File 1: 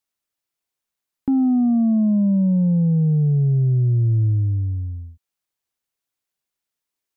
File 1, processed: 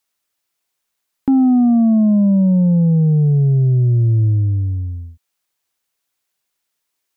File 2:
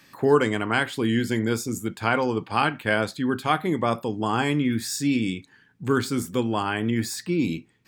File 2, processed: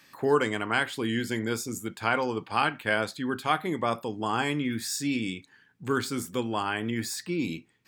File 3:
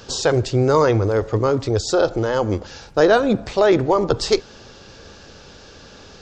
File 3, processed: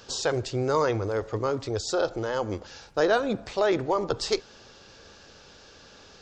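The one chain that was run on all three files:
low shelf 400 Hz -6 dB; normalise peaks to -9 dBFS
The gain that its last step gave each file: +9.5, -2.0, -6.0 dB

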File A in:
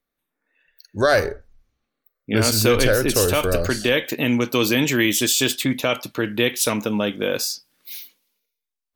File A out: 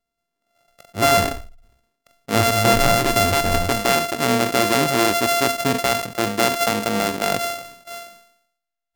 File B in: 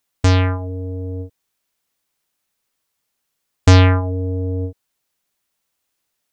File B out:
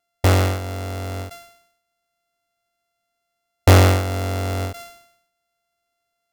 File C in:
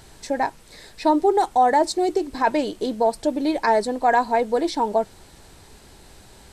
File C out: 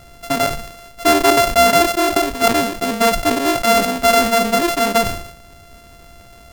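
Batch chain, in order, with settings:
sample sorter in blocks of 64 samples; sustainer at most 79 dB/s; normalise peaks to -3 dBFS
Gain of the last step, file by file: +0.5, -2.0, +4.5 dB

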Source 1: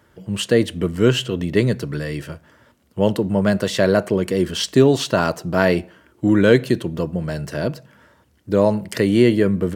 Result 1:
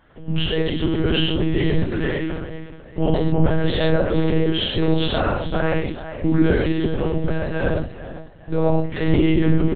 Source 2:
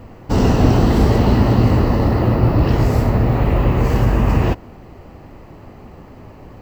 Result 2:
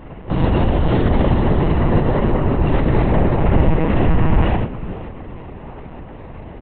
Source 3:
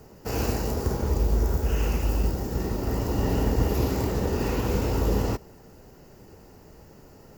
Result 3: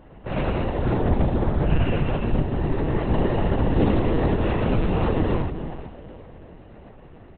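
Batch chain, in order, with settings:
limiter -12.5 dBFS; frequency-shifting echo 0.425 s, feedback 34%, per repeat +48 Hz, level -13 dB; non-linear reverb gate 0.16 s flat, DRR -2 dB; monotone LPC vocoder at 8 kHz 160 Hz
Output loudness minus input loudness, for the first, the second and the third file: -2.0, -2.0, +3.0 LU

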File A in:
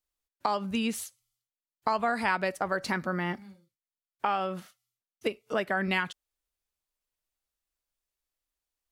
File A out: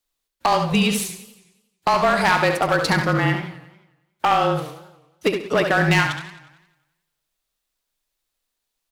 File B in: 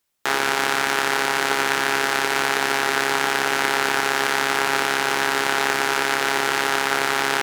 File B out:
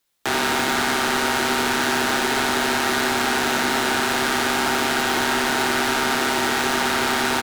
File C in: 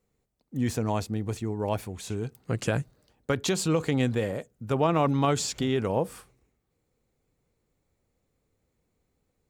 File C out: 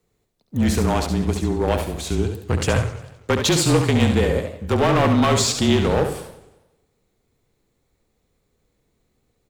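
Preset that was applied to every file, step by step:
frequency shift -28 Hz; in parallel at -5.5 dB: crossover distortion -42 dBFS; on the sum: bell 3800 Hz +4 dB 0.43 oct; hard clip -19 dBFS; on a send: feedback echo 69 ms, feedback 28%, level -7 dB; on the sum: warbling echo 90 ms, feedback 55%, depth 216 cents, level -14 dB; match loudness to -20 LUFS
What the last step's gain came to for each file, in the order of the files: +8.0, +1.5, +6.0 dB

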